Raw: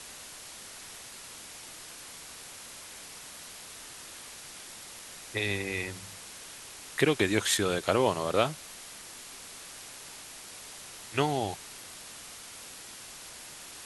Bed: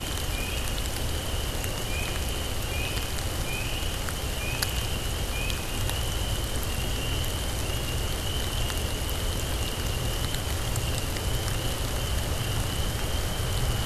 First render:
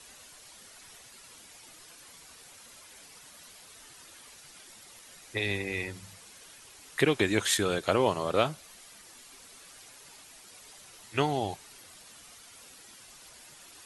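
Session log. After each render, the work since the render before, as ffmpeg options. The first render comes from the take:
ffmpeg -i in.wav -af "afftdn=noise_reduction=9:noise_floor=-46" out.wav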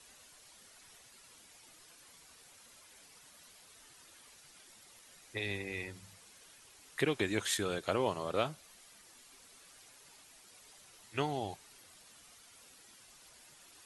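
ffmpeg -i in.wav -af "volume=-7dB" out.wav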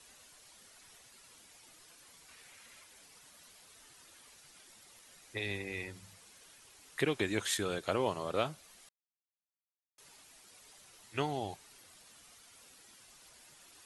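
ffmpeg -i in.wav -filter_complex "[0:a]asettb=1/sr,asplit=3[link_01][link_02][link_03];[link_01]atrim=end=2.284[link_04];[link_02]atrim=start=2.28:end=2.84,asetpts=PTS-STARTPTS,afade=type=in:duration=0.004:curve=qsin,afade=type=out:start_time=0.556:duration=0.004:curve=qsin,equalizer=frequency=2100:width=1.4:gain=8[link_05];[link_03]atrim=start=2.836[link_06];[link_04][link_05]acrossfade=duration=0.004:curve1=hsin:curve2=qsin[link_07];[link_07][link_06]acrossfade=duration=0.004:curve1=qsin:curve2=hsin,asplit=3[link_08][link_09][link_10];[link_08]atrim=end=8.89,asetpts=PTS-STARTPTS,afade=type=out:start_time=8.886:duration=0.004:curve=hsin[link_11];[link_09]atrim=start=8.89:end=9.98,asetpts=PTS-STARTPTS,volume=0[link_12];[link_10]atrim=start=9.98,asetpts=PTS-STARTPTS,afade=type=in:duration=0.004:curve=hsin[link_13];[link_11][link_12][link_13]concat=n=3:v=0:a=1" out.wav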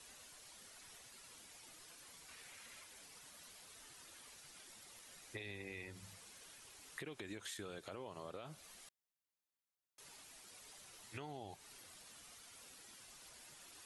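ffmpeg -i in.wav -af "alimiter=level_in=4dB:limit=-24dB:level=0:latency=1:release=94,volume=-4dB,acompressor=threshold=-45dB:ratio=6" out.wav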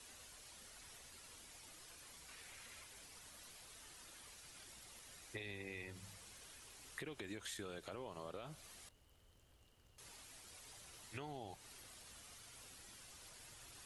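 ffmpeg -i in.wav -i bed.wav -filter_complex "[1:a]volume=-41dB[link_01];[0:a][link_01]amix=inputs=2:normalize=0" out.wav

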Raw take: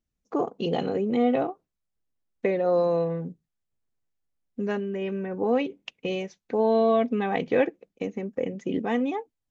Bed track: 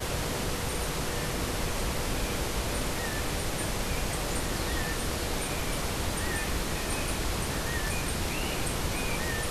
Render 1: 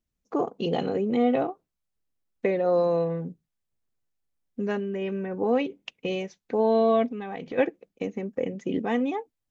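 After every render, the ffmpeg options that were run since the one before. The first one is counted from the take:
ffmpeg -i in.wav -filter_complex "[0:a]asplit=3[link_01][link_02][link_03];[link_01]afade=type=out:start_time=7.08:duration=0.02[link_04];[link_02]acompressor=threshold=-32dB:ratio=4:attack=3.2:release=140:knee=1:detection=peak,afade=type=in:start_time=7.08:duration=0.02,afade=type=out:start_time=7.57:duration=0.02[link_05];[link_03]afade=type=in:start_time=7.57:duration=0.02[link_06];[link_04][link_05][link_06]amix=inputs=3:normalize=0" out.wav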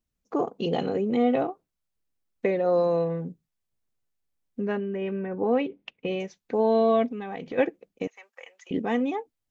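ffmpeg -i in.wav -filter_complex "[0:a]asettb=1/sr,asplit=3[link_01][link_02][link_03];[link_01]atrim=end=4.604[link_04];[link_02]atrim=start=4.6:end=6.2,asetpts=PTS-STARTPTS,afade=type=in:duration=0.004:curve=qsin,afade=type=out:start_time=1.596:duration=0.004:curve=qsin,lowpass=3100[link_05];[link_03]atrim=start=6.196[link_06];[link_04][link_05]acrossfade=duration=0.004:curve1=hsin:curve2=qsin[link_07];[link_07][link_06]acrossfade=duration=0.004:curve1=qsin:curve2=hsin,asettb=1/sr,asplit=3[link_08][link_09][link_10];[link_08]atrim=end=8.074[link_11];[link_09]atrim=start=8.07:end=8.71,asetpts=PTS-STARTPTS,afade=type=in:duration=0.004:curve=qsin,afade=type=out:start_time=0.636:duration=0.004:curve=qsin,highpass=frequency=940:width=0.5412,highpass=frequency=940:width=1.3066[link_12];[link_10]atrim=start=8.706[link_13];[link_11][link_12]acrossfade=duration=0.004:curve1=hsin:curve2=qsin[link_14];[link_14][link_13]acrossfade=duration=0.004:curve1=qsin:curve2=hsin" out.wav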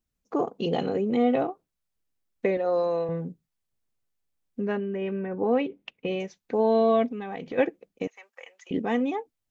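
ffmpeg -i in.wav -filter_complex "[0:a]asettb=1/sr,asplit=3[link_01][link_02][link_03];[link_01]atrim=end=2.574[link_04];[link_02]atrim=start=2.57:end=3.09,asetpts=PTS-STARTPTS,afade=type=in:duration=0.004:curve=qsin,afade=type=out:start_time=0.516:duration=0.004:curve=qsin,highpass=frequency=440:poles=1[link_05];[link_03]atrim=start=3.086[link_06];[link_04][link_05]acrossfade=duration=0.004:curve1=hsin:curve2=qsin[link_07];[link_07][link_06]acrossfade=duration=0.004:curve1=qsin:curve2=hsin" out.wav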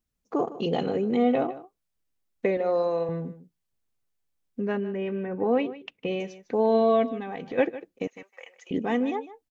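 ffmpeg -i in.wav -af "aecho=1:1:153:0.168" out.wav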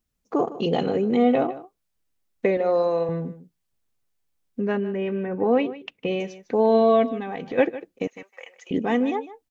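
ffmpeg -i in.wav -af "volume=3.5dB" out.wav

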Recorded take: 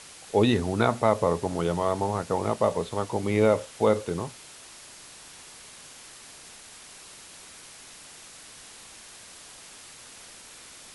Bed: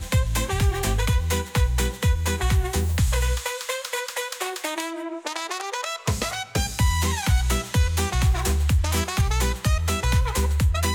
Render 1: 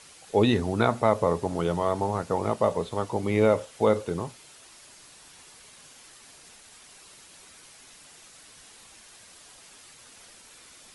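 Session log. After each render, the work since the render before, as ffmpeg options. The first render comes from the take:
ffmpeg -i in.wav -af "afftdn=noise_reduction=6:noise_floor=-48" out.wav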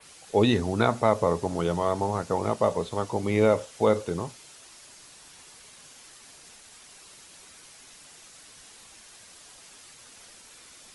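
ffmpeg -i in.wav -af "adynamicequalizer=threshold=0.00224:dfrequency=6100:dqfactor=1.3:tfrequency=6100:tqfactor=1.3:attack=5:release=100:ratio=0.375:range=2:mode=boostabove:tftype=bell" out.wav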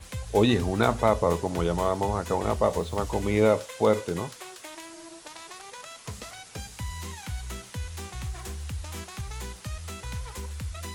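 ffmpeg -i in.wav -i bed.wav -filter_complex "[1:a]volume=-14.5dB[link_01];[0:a][link_01]amix=inputs=2:normalize=0" out.wav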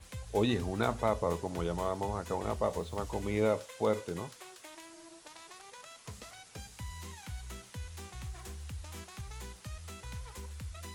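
ffmpeg -i in.wav -af "volume=-8dB" out.wav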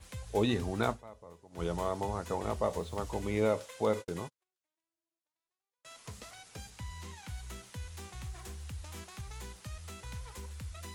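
ffmpeg -i in.wav -filter_complex "[0:a]asettb=1/sr,asplit=3[link_01][link_02][link_03];[link_01]atrim=end=3.934[link_04];[link_02]atrim=start=3.93:end=5.85,asetpts=PTS-STARTPTS,afade=type=in:duration=0.004:curve=qsin,afade=type=out:start_time=1.916:duration=0.004:curve=qsin,agate=range=-44dB:threshold=-44dB:ratio=16:release=100:detection=peak[link_05];[link_03]atrim=start=5.846[link_06];[link_04][link_05]acrossfade=duration=0.004:curve1=hsin:curve2=qsin[link_07];[link_07][link_06]acrossfade=duration=0.004:curve1=qsin:curve2=hsin,asettb=1/sr,asplit=3[link_08][link_09][link_10];[link_08]atrim=end=6.704[link_11];[link_09]atrim=start=6.7:end=7.28,asetpts=PTS-STARTPTS,afade=type=in:duration=0.004:curve=qsin,afade=type=out:start_time=0.576:duration=0.004:curve=qsin,highshelf=frequency=11000:gain=-10[link_12];[link_10]atrim=start=7.276[link_13];[link_11][link_12]acrossfade=duration=0.004:curve1=hsin:curve2=qsin[link_14];[link_14][link_13]acrossfade=duration=0.004:curve1=qsin:curve2=hsin,asplit=3[link_15][link_16][link_17];[link_15]atrim=end=1.04,asetpts=PTS-STARTPTS,afade=type=out:start_time=0.9:duration=0.14:curve=qua:silence=0.0944061[link_18];[link_16]atrim=start=1.04:end=1.49,asetpts=PTS-STARTPTS,volume=-20.5dB[link_19];[link_17]atrim=start=1.49,asetpts=PTS-STARTPTS,afade=type=in:duration=0.14:curve=qua:silence=0.0944061[link_20];[link_18][link_19][link_20]concat=n=3:v=0:a=1" out.wav

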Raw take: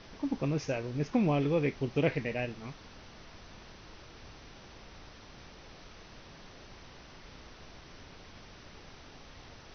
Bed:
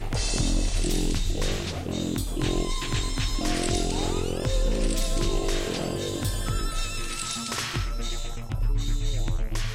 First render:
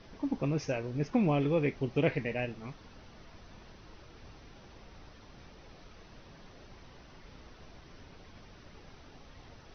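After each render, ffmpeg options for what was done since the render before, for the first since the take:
ffmpeg -i in.wav -af "afftdn=noise_reduction=6:noise_floor=-52" out.wav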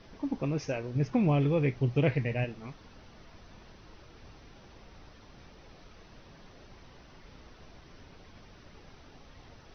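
ffmpeg -i in.wav -filter_complex "[0:a]asettb=1/sr,asplit=3[link_01][link_02][link_03];[link_01]atrim=end=0.954[link_04];[link_02]atrim=start=0.95:end=2.44,asetpts=PTS-STARTPTS,afade=type=in:duration=0.004:curve=qsin,afade=type=out:start_time=1.486:duration=0.004:curve=qsin,equalizer=frequency=120:width_type=o:width=0.53:gain=11.5[link_05];[link_03]atrim=start=2.436[link_06];[link_04][link_05]acrossfade=duration=0.004:curve1=hsin:curve2=qsin[link_07];[link_07][link_06]acrossfade=duration=0.004:curve1=qsin:curve2=hsin" out.wav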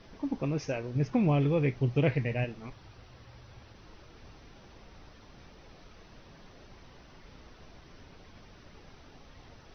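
ffmpeg -i in.wav -filter_complex "[0:a]asplit=3[link_01][link_02][link_03];[link_01]afade=type=out:start_time=2.69:duration=0.02[link_04];[link_02]afreqshift=-130,afade=type=in:start_time=2.69:duration=0.02,afade=type=out:start_time=3.73:duration=0.02[link_05];[link_03]afade=type=in:start_time=3.73:duration=0.02[link_06];[link_04][link_05][link_06]amix=inputs=3:normalize=0" out.wav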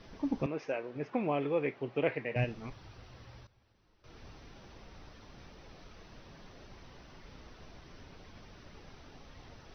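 ffmpeg -i in.wav -filter_complex "[0:a]asettb=1/sr,asplit=3[link_01][link_02][link_03];[link_01]atrim=end=0.464[link_04];[link_02]atrim=start=0.46:end=2.36,asetpts=PTS-STARTPTS,afade=type=in:duration=0.004:curve=qsin,afade=type=out:start_time=1.896:duration=0.004:curve=qsin,highpass=370,lowpass=2700[link_05];[link_03]atrim=start=2.356[link_06];[link_04][link_05]acrossfade=duration=0.004:curve1=hsin:curve2=qsin[link_07];[link_07][link_06]acrossfade=duration=0.004:curve1=qsin:curve2=hsin,asplit=3[link_08][link_09][link_10];[link_08]atrim=end=3.47,asetpts=PTS-STARTPTS,afade=type=out:start_time=3.22:duration=0.25:curve=log:silence=0.133352[link_11];[link_09]atrim=start=3.47:end=4.04,asetpts=PTS-STARTPTS,volume=-17.5dB[link_12];[link_10]atrim=start=4.04,asetpts=PTS-STARTPTS,afade=type=in:duration=0.25:curve=log:silence=0.133352[link_13];[link_11][link_12][link_13]concat=n=3:v=0:a=1" out.wav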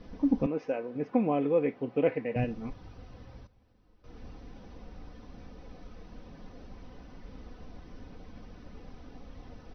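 ffmpeg -i in.wav -af "tiltshelf=frequency=880:gain=6,aecho=1:1:4:0.47" out.wav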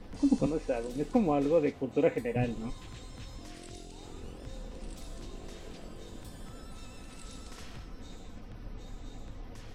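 ffmpeg -i in.wav -i bed.wav -filter_complex "[1:a]volume=-21dB[link_01];[0:a][link_01]amix=inputs=2:normalize=0" out.wav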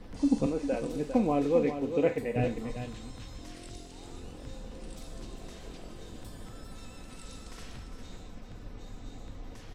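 ffmpeg -i in.wav -filter_complex "[0:a]asplit=2[link_01][link_02];[link_02]adelay=42,volume=-13dB[link_03];[link_01][link_03]amix=inputs=2:normalize=0,aecho=1:1:401:0.355" out.wav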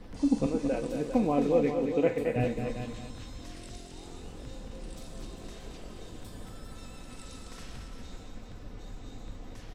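ffmpeg -i in.wav -af "aecho=1:1:224:0.422" out.wav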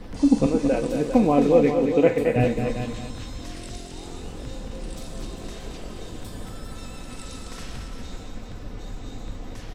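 ffmpeg -i in.wav -af "volume=8dB" out.wav

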